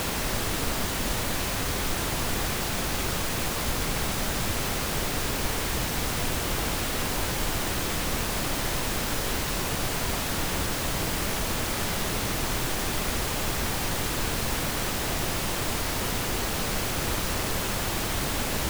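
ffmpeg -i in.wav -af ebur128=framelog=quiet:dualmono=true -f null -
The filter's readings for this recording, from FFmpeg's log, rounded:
Integrated loudness:
  I:         -24.5 LUFS
  Threshold: -34.5 LUFS
Loudness range:
  LRA:         0.1 LU
  Threshold: -44.5 LUFS
  LRA low:   -24.6 LUFS
  LRA high:  -24.5 LUFS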